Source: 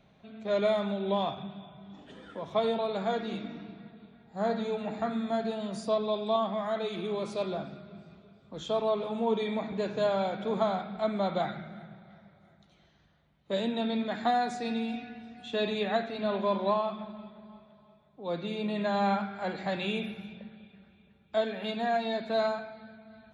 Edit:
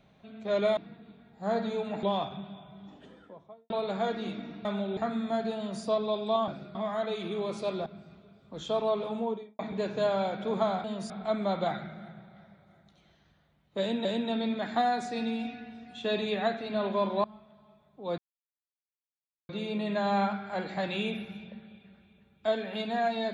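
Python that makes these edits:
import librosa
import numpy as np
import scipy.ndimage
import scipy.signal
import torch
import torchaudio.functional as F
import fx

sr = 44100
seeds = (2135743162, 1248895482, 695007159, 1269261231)

y = fx.studio_fade_out(x, sr, start_s=1.82, length_s=0.94)
y = fx.studio_fade_out(y, sr, start_s=9.08, length_s=0.51)
y = fx.edit(y, sr, fx.swap(start_s=0.77, length_s=0.32, other_s=3.71, other_length_s=1.26),
    fx.duplicate(start_s=5.57, length_s=0.26, to_s=10.84),
    fx.move(start_s=7.59, length_s=0.27, to_s=6.48),
    fx.repeat(start_s=13.54, length_s=0.25, count=2),
    fx.cut(start_s=16.73, length_s=0.71),
    fx.insert_silence(at_s=18.38, length_s=1.31), tone=tone)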